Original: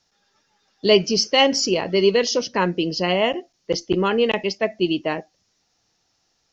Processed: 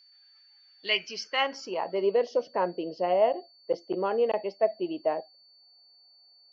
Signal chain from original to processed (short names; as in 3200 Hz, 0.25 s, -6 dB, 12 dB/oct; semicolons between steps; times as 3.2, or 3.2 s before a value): band-pass sweep 2100 Hz -> 650 Hz, 1.03–2.08; whine 4500 Hz -56 dBFS